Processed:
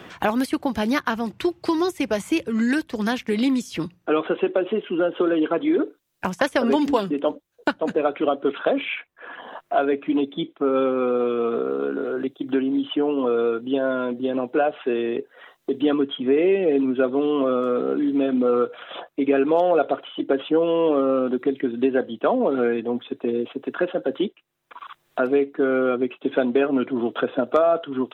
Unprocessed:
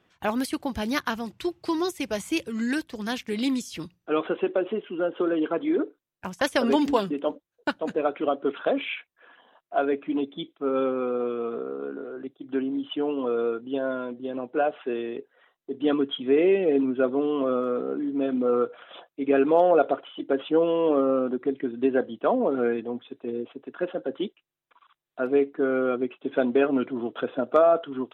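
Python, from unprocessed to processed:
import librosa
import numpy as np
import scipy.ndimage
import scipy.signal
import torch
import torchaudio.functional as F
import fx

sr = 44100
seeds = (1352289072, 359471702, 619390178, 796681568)

y = fx.band_squash(x, sr, depth_pct=70)
y = y * librosa.db_to_amplitude(3.5)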